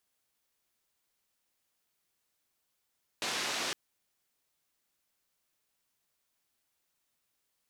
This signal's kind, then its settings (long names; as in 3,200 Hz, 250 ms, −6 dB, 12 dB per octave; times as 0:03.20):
band-limited noise 210–5,000 Hz, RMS −34.5 dBFS 0.51 s